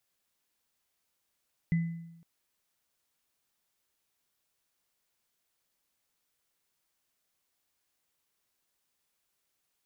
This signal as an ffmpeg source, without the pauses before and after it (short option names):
-f lavfi -i "aevalsrc='0.0794*pow(10,-3*t/0.91)*sin(2*PI*167*t)+0.0112*pow(10,-3*t/0.59)*sin(2*PI*2010*t)':d=0.51:s=44100"